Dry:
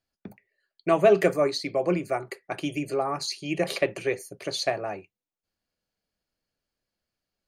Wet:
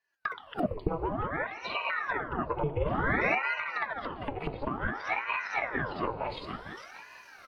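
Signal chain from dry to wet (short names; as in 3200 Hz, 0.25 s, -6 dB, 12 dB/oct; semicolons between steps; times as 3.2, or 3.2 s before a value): regenerating reverse delay 0.228 s, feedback 52%, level -3 dB; recorder AGC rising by 38 dB/s; 0.65–0.88 spectral delete 1200–2900 Hz; 1.46–1.9 HPF 670 Hz 24 dB/oct; treble ducked by the level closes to 880 Hz, closed at -21 dBFS; high shelf 5300 Hz -10.5 dB; comb 3.8 ms, depth 54%; compressor 5:1, threshold -25 dBFS, peak gain reduction 10 dB; fixed phaser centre 1700 Hz, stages 6; 2.74–3.35 flutter echo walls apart 8.1 m, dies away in 1.2 s; FDN reverb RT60 3.3 s, high-frequency decay 0.6×, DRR 12.5 dB; ring modulator with a swept carrier 950 Hz, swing 85%, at 0.56 Hz; gain +5 dB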